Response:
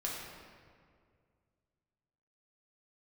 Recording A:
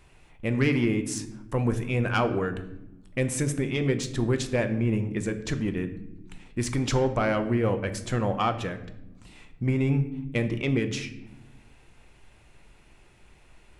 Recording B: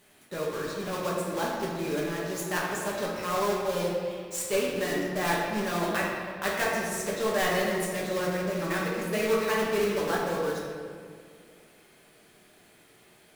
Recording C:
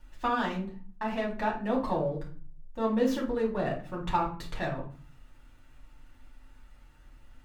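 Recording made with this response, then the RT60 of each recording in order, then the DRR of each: B; 1.0, 2.1, 0.40 seconds; 7.5, −4.5, −4.5 decibels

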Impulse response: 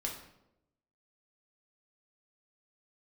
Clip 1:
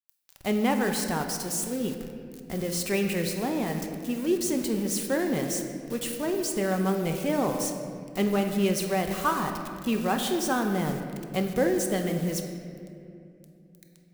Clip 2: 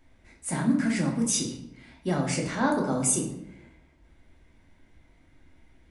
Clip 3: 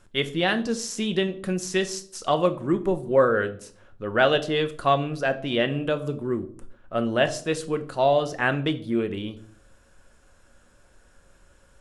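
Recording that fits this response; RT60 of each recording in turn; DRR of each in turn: 2; 2.6, 0.85, 0.55 seconds; 4.0, −1.5, 8.0 decibels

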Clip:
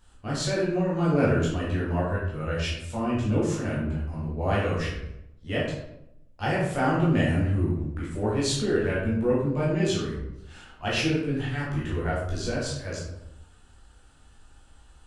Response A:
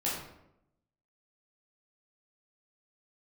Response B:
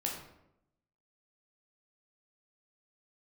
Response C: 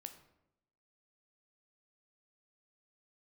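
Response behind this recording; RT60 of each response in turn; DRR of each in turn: A; 0.80, 0.80, 0.85 seconds; −7.5, −1.5, 7.0 decibels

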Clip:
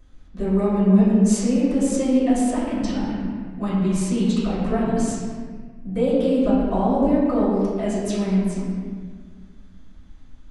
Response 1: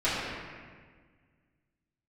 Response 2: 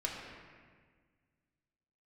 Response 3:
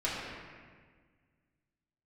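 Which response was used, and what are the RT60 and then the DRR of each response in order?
1; 1.6, 1.6, 1.6 seconds; −12.5, −2.0, −8.0 decibels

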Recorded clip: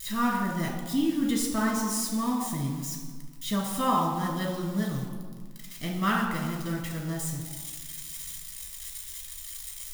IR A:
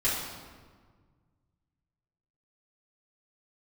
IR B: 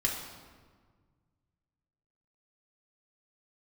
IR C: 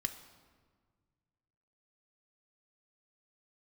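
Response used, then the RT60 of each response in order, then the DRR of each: B; 1.6, 1.6, 1.7 seconds; −10.0, −2.0, 7.5 decibels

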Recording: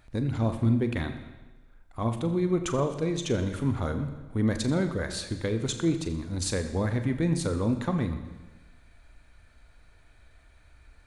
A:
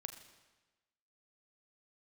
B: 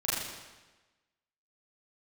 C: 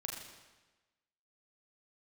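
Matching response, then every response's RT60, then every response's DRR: A; 1.2, 1.2, 1.2 seconds; 7.0, −9.5, −0.5 decibels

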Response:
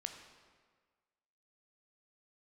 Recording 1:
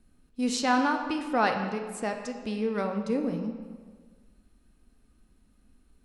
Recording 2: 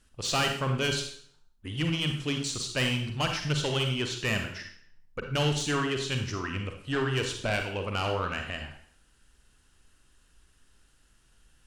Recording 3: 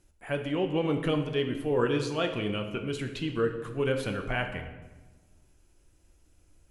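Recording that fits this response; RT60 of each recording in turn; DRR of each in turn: 1; 1.6, 0.60, 1.2 seconds; 4.5, 4.0, 4.5 decibels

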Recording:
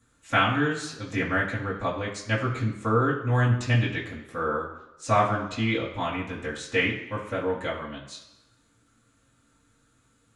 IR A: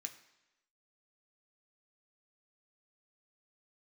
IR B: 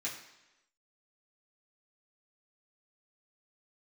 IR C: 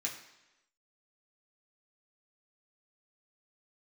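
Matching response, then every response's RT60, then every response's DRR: B; 1.0, 1.0, 1.0 seconds; 4.5, −8.0, −3.5 decibels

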